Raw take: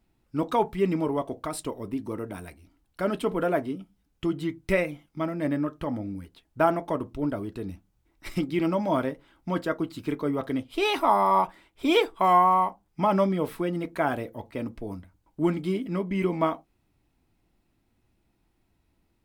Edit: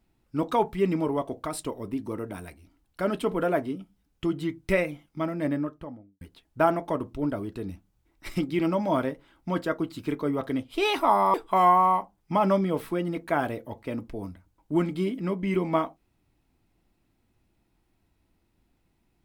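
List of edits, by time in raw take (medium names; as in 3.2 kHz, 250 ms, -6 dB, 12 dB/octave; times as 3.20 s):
5.40–6.21 s: studio fade out
11.34–12.02 s: delete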